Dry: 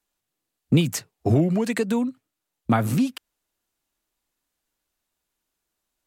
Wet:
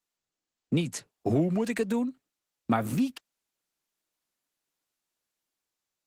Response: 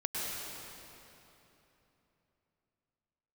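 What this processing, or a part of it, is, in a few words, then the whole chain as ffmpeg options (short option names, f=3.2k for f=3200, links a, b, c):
video call: -af "highpass=150,dynaudnorm=f=250:g=7:m=5dB,volume=-8.5dB" -ar 48000 -c:a libopus -b:a 16k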